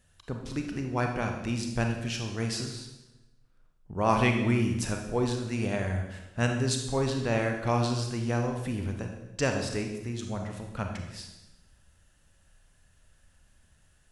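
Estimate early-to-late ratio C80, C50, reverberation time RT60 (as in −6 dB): 7.5 dB, 5.0 dB, 1.0 s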